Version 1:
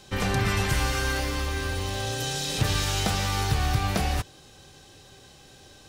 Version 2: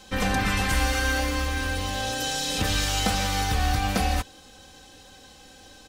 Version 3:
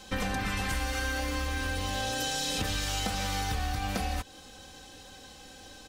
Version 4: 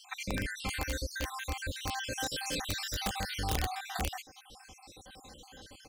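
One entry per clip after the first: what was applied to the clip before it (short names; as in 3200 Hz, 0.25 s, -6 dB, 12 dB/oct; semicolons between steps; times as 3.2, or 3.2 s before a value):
comb 3.9 ms, depth 71%
compressor, threshold -28 dBFS, peak gain reduction 9 dB
random spectral dropouts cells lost 60%; wrapped overs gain 24 dB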